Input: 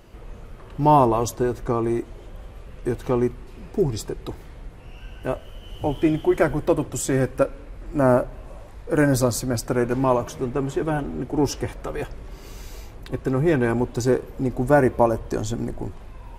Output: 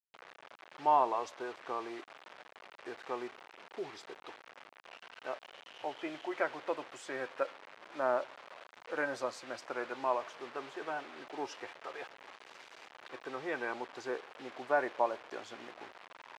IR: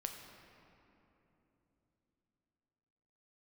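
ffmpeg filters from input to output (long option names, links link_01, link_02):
-af "acrusher=bits=5:mix=0:aa=0.000001,highpass=730,lowpass=3000,volume=-8dB"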